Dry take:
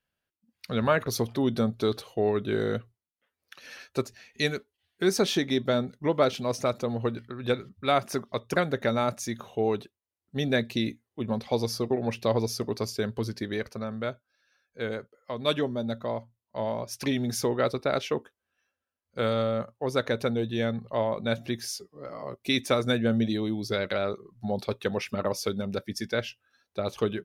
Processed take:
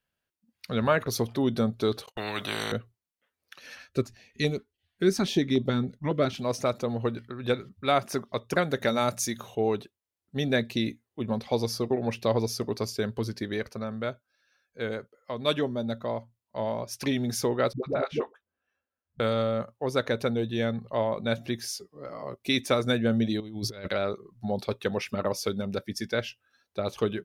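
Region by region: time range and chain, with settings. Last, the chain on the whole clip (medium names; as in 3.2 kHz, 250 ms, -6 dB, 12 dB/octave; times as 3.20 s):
2.06–2.72 s: high-pass 130 Hz + gate -49 dBFS, range -55 dB + spectrum-flattening compressor 4:1
3.75–6.39 s: tilt EQ -1.5 dB/octave + step-sequenced notch 7.2 Hz 390–1600 Hz
8.70–9.55 s: treble shelf 3.9 kHz +9 dB + de-hum 58.15 Hz, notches 3
17.73–19.20 s: low-pass 1.4 kHz 6 dB/octave + phase dispersion highs, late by 98 ms, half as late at 360 Hz
23.40–23.88 s: bass shelf 78 Hz +10.5 dB + compressor with a negative ratio -34 dBFS, ratio -0.5
whole clip: none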